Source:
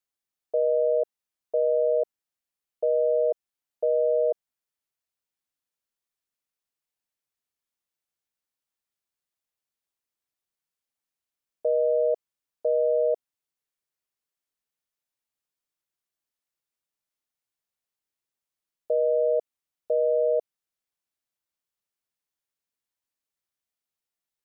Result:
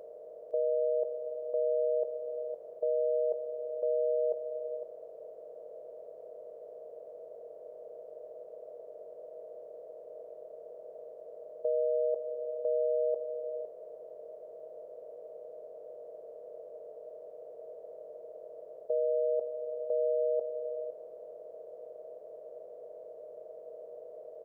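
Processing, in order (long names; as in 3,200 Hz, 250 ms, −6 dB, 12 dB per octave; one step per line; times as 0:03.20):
compressor on every frequency bin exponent 0.2
on a send: single-tap delay 509 ms −8.5 dB
on the sum: level −7 dB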